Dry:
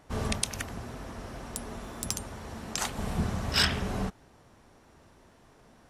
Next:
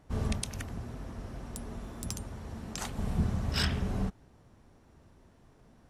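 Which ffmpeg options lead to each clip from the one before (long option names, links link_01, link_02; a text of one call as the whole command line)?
ffmpeg -i in.wav -af "lowshelf=frequency=320:gain=10,volume=-7.5dB" out.wav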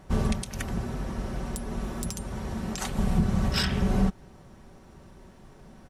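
ffmpeg -i in.wav -af "alimiter=limit=-24dB:level=0:latency=1:release=261,aecho=1:1:5.3:0.41,volume=9dB" out.wav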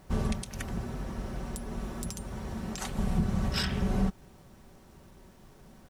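ffmpeg -i in.wav -af "acrusher=bits=9:mix=0:aa=0.000001,volume=-4dB" out.wav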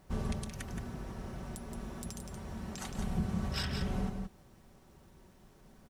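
ffmpeg -i in.wav -af "aecho=1:1:172:0.473,volume=-6dB" out.wav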